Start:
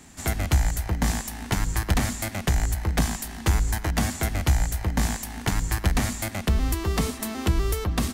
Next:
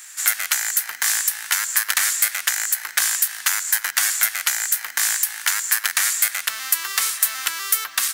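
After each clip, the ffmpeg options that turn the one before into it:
ffmpeg -i in.wav -af "highpass=frequency=1500:width_type=q:width=2.5,acrusher=bits=8:mode=log:mix=0:aa=0.000001,crystalizer=i=4:c=0" out.wav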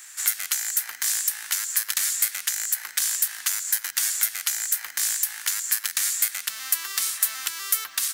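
ffmpeg -i in.wav -filter_complex "[0:a]acrossover=split=300|3000[link_01][link_02][link_03];[link_02]acompressor=threshold=-32dB:ratio=6[link_04];[link_01][link_04][link_03]amix=inputs=3:normalize=0,volume=-3.5dB" out.wav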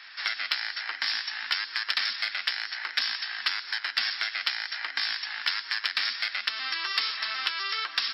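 ffmpeg -i in.wav -filter_complex "[0:a]afftfilt=real='re*between(b*sr/4096,220,5500)':imag='im*between(b*sr/4096,220,5500)':win_size=4096:overlap=0.75,asplit=2[link_01][link_02];[link_02]asoftclip=type=hard:threshold=-24.5dB,volume=-11dB[link_03];[link_01][link_03]amix=inputs=2:normalize=0,flanger=delay=2.5:depth=8:regen=-52:speed=0.59:shape=sinusoidal,volume=6.5dB" out.wav

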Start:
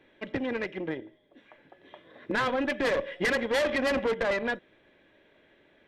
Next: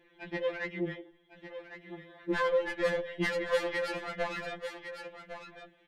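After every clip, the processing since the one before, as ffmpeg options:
ffmpeg -i in.wav -filter_complex "[0:a]aecho=1:1:1104:0.251,acrossover=split=440[link_01][link_02];[link_02]acompressor=threshold=-28dB:ratio=6[link_03];[link_01][link_03]amix=inputs=2:normalize=0,afftfilt=real='re*2.83*eq(mod(b,8),0)':imag='im*2.83*eq(mod(b,8),0)':win_size=2048:overlap=0.75" out.wav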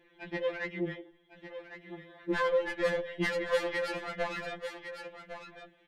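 ffmpeg -i in.wav -af anull out.wav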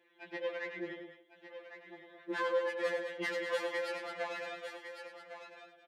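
ffmpeg -i in.wav -filter_complex "[0:a]highpass=350,asplit=2[link_01][link_02];[link_02]aecho=0:1:102|209.9:0.355|0.316[link_03];[link_01][link_03]amix=inputs=2:normalize=0,volume=-4.5dB" out.wav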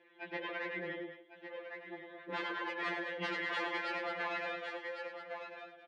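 ffmpeg -i in.wav -af "afftfilt=real='re*lt(hypot(re,im),0.0794)':imag='im*lt(hypot(re,im),0.0794)':win_size=1024:overlap=0.75,lowpass=3300,volume=5dB" out.wav

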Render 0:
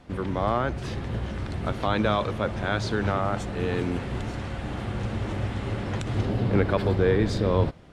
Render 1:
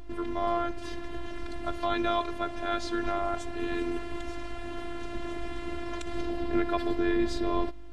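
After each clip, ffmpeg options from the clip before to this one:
ffmpeg -i in.wav -af "aeval=exprs='val(0)+0.0158*(sin(2*PI*50*n/s)+sin(2*PI*2*50*n/s)/2+sin(2*PI*3*50*n/s)/3+sin(2*PI*4*50*n/s)/4+sin(2*PI*5*50*n/s)/5)':channel_layout=same,afftfilt=real='hypot(re,im)*cos(PI*b)':imag='0':win_size=512:overlap=0.75" out.wav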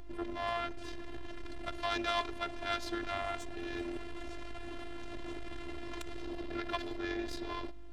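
ffmpeg -i in.wav -filter_complex "[0:a]acrossover=split=790[link_01][link_02];[link_01]alimiter=level_in=1dB:limit=-24dB:level=0:latency=1,volume=-1dB[link_03];[link_03][link_02]amix=inputs=2:normalize=0,aeval=exprs='0.141*(cos(1*acos(clip(val(0)/0.141,-1,1)))-cos(1*PI/2))+0.0316*(cos(4*acos(clip(val(0)/0.141,-1,1)))-cos(4*PI/2))':channel_layout=same,volume=-2.5dB" out.wav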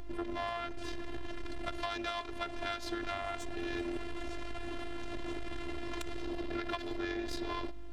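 ffmpeg -i in.wav -af "acompressor=threshold=-37dB:ratio=6,volume=4dB" out.wav

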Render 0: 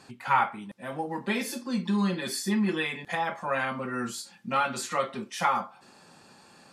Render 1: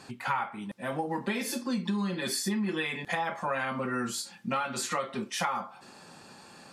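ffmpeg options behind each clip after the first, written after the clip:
ffmpeg -i in.wav -af "acompressor=threshold=-31dB:ratio=6,volume=3.5dB" out.wav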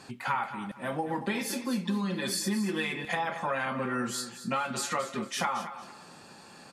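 ffmpeg -i in.wav -af "aecho=1:1:228|456|684:0.251|0.0653|0.017" out.wav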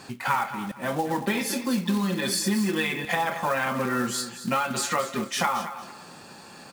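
ffmpeg -i in.wav -af "acrusher=bits=4:mode=log:mix=0:aa=0.000001,volume=5dB" out.wav

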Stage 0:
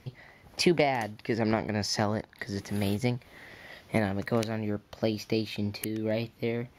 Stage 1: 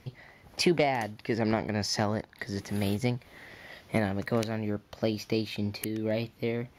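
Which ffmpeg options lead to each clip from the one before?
ffmpeg -i in.wav -af "asoftclip=type=tanh:threshold=-11.5dB" out.wav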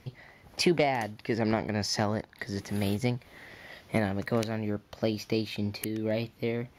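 ffmpeg -i in.wav -af anull out.wav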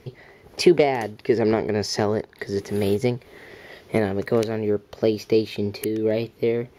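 ffmpeg -i in.wav -af "equalizer=frequency=410:width_type=o:width=0.48:gain=13,volume=3dB" out.wav

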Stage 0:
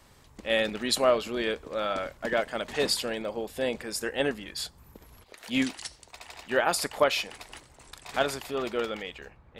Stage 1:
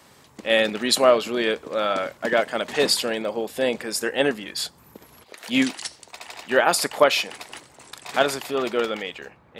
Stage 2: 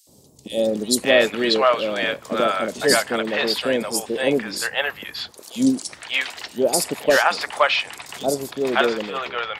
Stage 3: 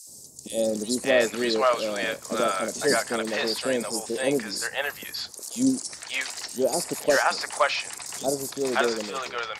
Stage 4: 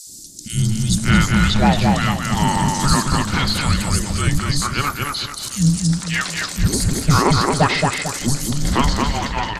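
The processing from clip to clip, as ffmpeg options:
ffmpeg -i in.wav -af "highpass=150,volume=6.5dB" out.wav
ffmpeg -i in.wav -filter_complex "[0:a]asoftclip=type=hard:threshold=-5dB,acrossover=split=640|4500[link_01][link_02][link_03];[link_01]adelay=70[link_04];[link_02]adelay=590[link_05];[link_04][link_05][link_03]amix=inputs=3:normalize=0,volume=4dB" out.wav
ffmpeg -i in.wav -filter_complex "[0:a]aexciter=amount=6.1:drive=7.5:freq=4700,lowpass=9200,acrossover=split=2600[link_01][link_02];[link_02]acompressor=threshold=-26dB:ratio=4:attack=1:release=60[link_03];[link_01][link_03]amix=inputs=2:normalize=0,volume=-4.5dB" out.wav
ffmpeg -i in.wav -filter_complex "[0:a]afreqshift=-430,asplit=2[link_01][link_02];[link_02]adelay=223,lowpass=frequency=3500:poles=1,volume=-3dB,asplit=2[link_03][link_04];[link_04]adelay=223,lowpass=frequency=3500:poles=1,volume=0.37,asplit=2[link_05][link_06];[link_06]adelay=223,lowpass=frequency=3500:poles=1,volume=0.37,asplit=2[link_07][link_08];[link_08]adelay=223,lowpass=frequency=3500:poles=1,volume=0.37,asplit=2[link_09][link_10];[link_10]adelay=223,lowpass=frequency=3500:poles=1,volume=0.37[link_11];[link_01][link_03][link_05][link_07][link_09][link_11]amix=inputs=6:normalize=0,acontrast=89" out.wav

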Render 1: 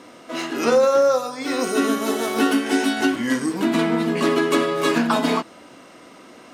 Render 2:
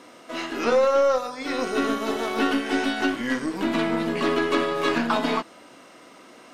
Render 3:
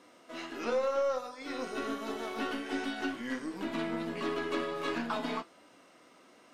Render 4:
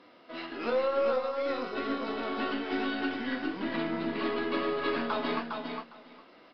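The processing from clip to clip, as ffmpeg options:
ffmpeg -i in.wav -filter_complex "[0:a]aeval=exprs='0.501*(cos(1*acos(clip(val(0)/0.501,-1,1)))-cos(1*PI/2))+0.126*(cos(2*acos(clip(val(0)/0.501,-1,1)))-cos(2*PI/2))+0.0631*(cos(4*acos(clip(val(0)/0.501,-1,1)))-cos(4*PI/2))+0.01*(cos(8*acos(clip(val(0)/0.501,-1,1)))-cos(8*PI/2))':channel_layout=same,acrossover=split=5100[link_01][link_02];[link_02]acompressor=threshold=-47dB:ratio=4:attack=1:release=60[link_03];[link_01][link_03]amix=inputs=2:normalize=0,lowshelf=frequency=270:gain=-6,volume=-2dB" out.wav
ffmpeg -i in.wav -af "flanger=delay=9.8:depth=2.9:regen=-58:speed=1.4:shape=sinusoidal,volume=-7dB" out.wav
ffmpeg -i in.wav -filter_complex "[0:a]asplit=2[link_01][link_02];[link_02]aecho=0:1:407|814|1221:0.596|0.0893|0.0134[link_03];[link_01][link_03]amix=inputs=2:normalize=0,aresample=11025,aresample=44100,volume=2dB" out.wav

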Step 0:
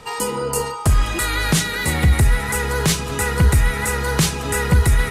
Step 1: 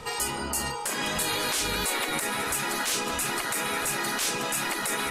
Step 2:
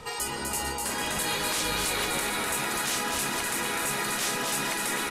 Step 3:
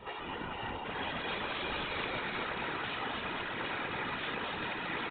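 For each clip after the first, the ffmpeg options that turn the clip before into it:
ffmpeg -i in.wav -af "afftfilt=real='re*lt(hypot(re,im),0.2)':imag='im*lt(hypot(re,im),0.2)':win_size=1024:overlap=0.75,alimiter=limit=-17dB:level=0:latency=1:release=42" out.wav
ffmpeg -i in.wav -af "aecho=1:1:250|450|610|738|840.4:0.631|0.398|0.251|0.158|0.1,volume=-2.5dB" out.wav
ffmpeg -i in.wav -af "afftfilt=real='hypot(re,im)*cos(2*PI*random(0))':imag='hypot(re,im)*sin(2*PI*random(1))':win_size=512:overlap=0.75,aresample=8000,aresample=44100" out.wav

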